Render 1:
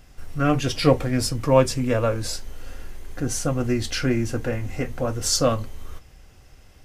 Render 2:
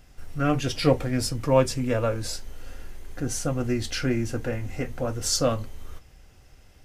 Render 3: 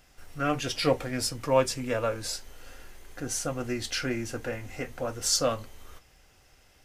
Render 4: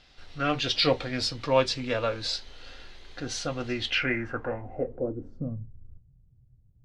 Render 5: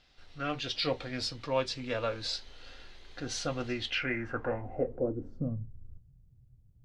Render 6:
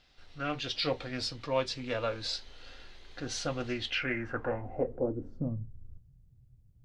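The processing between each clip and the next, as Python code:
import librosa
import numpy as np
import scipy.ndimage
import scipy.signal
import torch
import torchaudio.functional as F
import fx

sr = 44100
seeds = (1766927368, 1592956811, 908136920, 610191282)

y1 = fx.notch(x, sr, hz=1100.0, q=24.0)
y1 = y1 * 10.0 ** (-3.0 / 20.0)
y2 = fx.low_shelf(y1, sr, hz=330.0, db=-10.5)
y3 = fx.filter_sweep_lowpass(y2, sr, from_hz=4000.0, to_hz=130.0, start_s=3.73, end_s=5.67, q=3.8)
y4 = fx.rider(y3, sr, range_db=4, speed_s=0.5)
y4 = y4 * 10.0 ** (-4.5 / 20.0)
y5 = fx.doppler_dist(y4, sr, depth_ms=0.16)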